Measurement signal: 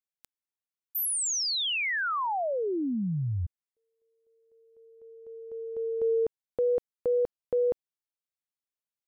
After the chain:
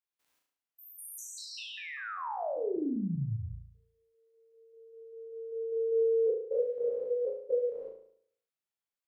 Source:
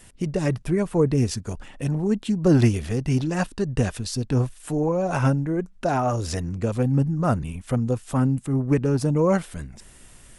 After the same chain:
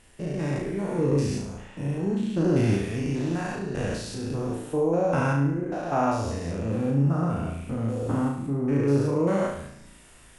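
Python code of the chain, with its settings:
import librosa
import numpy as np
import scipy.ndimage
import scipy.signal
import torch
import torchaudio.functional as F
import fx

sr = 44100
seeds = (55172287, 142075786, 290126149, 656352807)

y = fx.spec_steps(x, sr, hold_ms=200)
y = fx.bass_treble(y, sr, bass_db=-6, treble_db=-5)
y = fx.room_flutter(y, sr, wall_m=6.1, rt60_s=0.63)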